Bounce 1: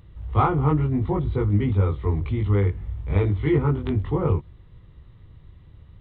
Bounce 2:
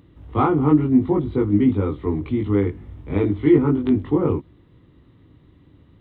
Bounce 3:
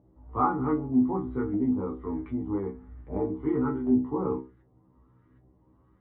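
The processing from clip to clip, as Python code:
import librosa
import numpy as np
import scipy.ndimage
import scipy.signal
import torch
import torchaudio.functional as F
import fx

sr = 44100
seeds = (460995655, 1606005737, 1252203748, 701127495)

y1 = fx.highpass(x, sr, hz=160.0, slope=6)
y1 = fx.peak_eq(y1, sr, hz=280.0, db=14.0, octaves=0.76)
y2 = fx.filter_lfo_lowpass(y1, sr, shape='saw_up', hz=1.3, low_hz=700.0, high_hz=1700.0, q=3.0)
y2 = fx.stiff_resonator(y2, sr, f0_hz=62.0, decay_s=0.36, stiffness=0.002)
y2 = F.gain(torch.from_numpy(y2), -2.0).numpy()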